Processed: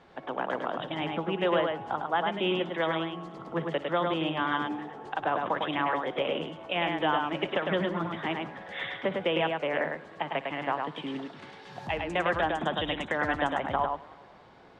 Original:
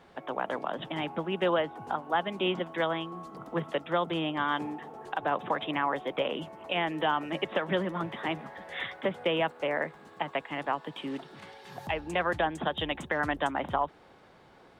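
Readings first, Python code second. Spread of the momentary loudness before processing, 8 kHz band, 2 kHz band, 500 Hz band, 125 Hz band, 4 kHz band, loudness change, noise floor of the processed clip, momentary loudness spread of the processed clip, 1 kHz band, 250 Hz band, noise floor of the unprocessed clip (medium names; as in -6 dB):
9 LU, no reading, +1.5 dB, +1.5 dB, +1.5 dB, +1.5 dB, +1.5 dB, -51 dBFS, 9 LU, +1.5 dB, +1.5 dB, -57 dBFS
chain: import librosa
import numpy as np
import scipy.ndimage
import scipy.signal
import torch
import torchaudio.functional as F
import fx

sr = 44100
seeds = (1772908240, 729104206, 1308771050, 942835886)

y = scipy.signal.sosfilt(scipy.signal.butter(2, 6300.0, 'lowpass', fs=sr, output='sos'), x)
y = fx.echo_multitap(y, sr, ms=(58, 104), db=(-18.5, -4.0))
y = fx.echo_warbled(y, sr, ms=189, feedback_pct=52, rate_hz=2.8, cents=155, wet_db=-22)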